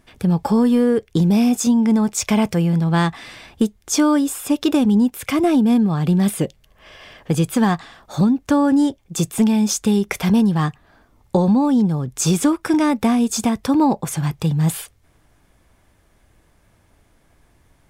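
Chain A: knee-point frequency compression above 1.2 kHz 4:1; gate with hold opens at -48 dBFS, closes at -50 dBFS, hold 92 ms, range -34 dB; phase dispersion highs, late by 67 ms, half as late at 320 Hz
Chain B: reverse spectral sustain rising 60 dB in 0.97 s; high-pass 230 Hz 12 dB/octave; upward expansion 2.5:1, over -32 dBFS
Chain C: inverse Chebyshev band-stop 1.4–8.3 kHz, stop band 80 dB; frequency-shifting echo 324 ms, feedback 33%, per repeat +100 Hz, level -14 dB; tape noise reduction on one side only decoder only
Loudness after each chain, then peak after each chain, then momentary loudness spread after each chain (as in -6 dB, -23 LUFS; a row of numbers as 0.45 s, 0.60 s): -18.0 LUFS, -24.0 LUFS, -20.0 LUFS; -2.5 dBFS, -4.5 dBFS, -9.0 dBFS; 7 LU, 15 LU, 11 LU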